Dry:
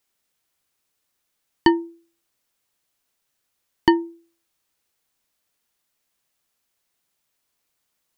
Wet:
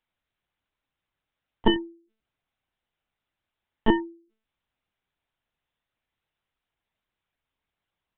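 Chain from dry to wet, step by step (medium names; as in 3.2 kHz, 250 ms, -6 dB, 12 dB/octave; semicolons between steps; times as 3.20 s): treble shelf 3.1 kHz -3 dB; monotone LPC vocoder at 8 kHz 220 Hz; trim -3 dB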